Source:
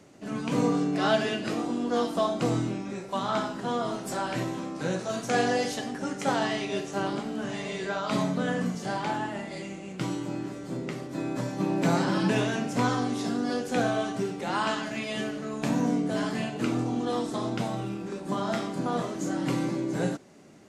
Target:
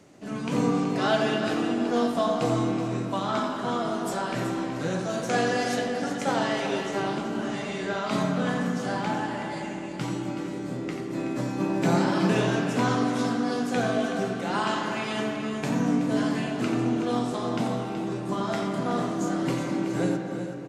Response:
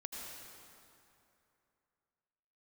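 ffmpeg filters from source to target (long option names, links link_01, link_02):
-filter_complex "[0:a]aecho=1:1:375:0.316,asplit=2[link_01][link_02];[1:a]atrim=start_sample=2205,lowpass=3400,adelay=88[link_03];[link_02][link_03]afir=irnorm=-1:irlink=0,volume=-2dB[link_04];[link_01][link_04]amix=inputs=2:normalize=0"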